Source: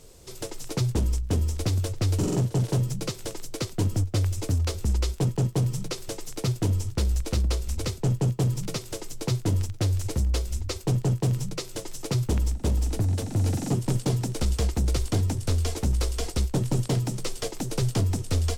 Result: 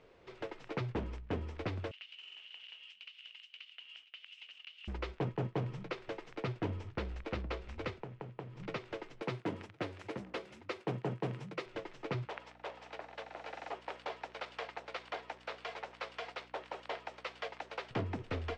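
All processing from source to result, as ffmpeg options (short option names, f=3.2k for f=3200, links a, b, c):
-filter_complex "[0:a]asettb=1/sr,asplit=3[a][b][c];[a]atrim=end=1.914[d];[b]atrim=start=1.91:end=4.88,asetpts=PTS-STARTPTS,afade=t=in:d=0.004:c=qsin,afade=t=out:st=2.966:d=0.004:c=qsin,highpass=f=2.9k:t=q:w=14,acompressor=threshold=-39dB:ratio=16:attack=3.2:release=140:knee=1:detection=peak[e];[c]atrim=start=4.876[f];[d][e]acrossfade=d=0.004:c1=hsin:c2=qsin[g];[g][f]acrossfade=d=0.004:c1=qsin:c2=hsin,asettb=1/sr,asplit=3[h][i][j];[h]atrim=end=7.944[k];[i]atrim=start=7.94:end=8.6,asetpts=PTS-STARTPTS,afade=t=in:d=0.004:c=qsin,afade=t=out:st=0.656:d=0.004:c=qsin,acompressor=threshold=-32dB:ratio=10:attack=3.2:release=140:knee=1:detection=peak,acrusher=bits=7:mode=log:mix=0:aa=0.000001[l];[j]atrim=start=8.596[m];[k][l]acrossfade=d=0.004:c1=hsin:c2=qsin[n];[n][m]acrossfade=d=0.004:c1=qsin:c2=hsin,asettb=1/sr,asplit=3[o][p][q];[o]atrim=end=9.224[r];[p]atrim=start=9.22:end=11.66,asetpts=PTS-STARTPTS,afade=t=in:d=0.004:c=qsin,afade=t=out:st=2.436:d=0.004:c=qsin,highpass=f=130:w=0.5412,highpass=f=130:w=1.3066,equalizer=f=11k:w=1.5:g=14,acompressor=mode=upward:threshold=-40dB:ratio=2.5:attack=3.2:release=140:knee=2.83:detection=peak[s];[q]atrim=start=11.656[t];[r][s]acrossfade=d=0.004:c1=hsin:c2=qsin[u];[u][t]acrossfade=d=0.004:c1=qsin:c2=hsin,asettb=1/sr,asplit=3[v][w][x];[v]atrim=end=12.254[y];[w]atrim=start=12.25:end=17.91,asetpts=PTS-STARTPTS,afade=t=in:d=0.004:c=qsin,afade=t=out:st=5.656:d=0.004:c=qsin,highpass=f=550:w=0.5412,highpass=f=550:w=1.3066,equalizer=f=4.2k:w=1.4:g=2.5,aeval=exprs='val(0)+0.00398*(sin(2*PI*60*n/s)+sin(2*PI*2*60*n/s)/2+sin(2*PI*3*60*n/s)/3+sin(2*PI*4*60*n/s)/4+sin(2*PI*5*60*n/s)/5)':c=same[z];[x]atrim=start=17.906[aa];[y][z]acrossfade=d=0.004:c1=hsin:c2=qsin[ab];[ab][aa]acrossfade=d=0.004:c1=qsin:c2=hsin,lowpass=f=2.3k:w=0.5412,lowpass=f=2.3k:w=1.3066,aemphasis=mode=production:type=riaa,volume=-2.5dB"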